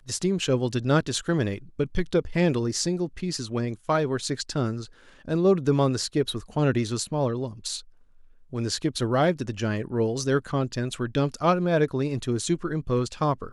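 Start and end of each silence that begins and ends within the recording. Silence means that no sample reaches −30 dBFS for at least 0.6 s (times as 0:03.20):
0:07.79–0:08.53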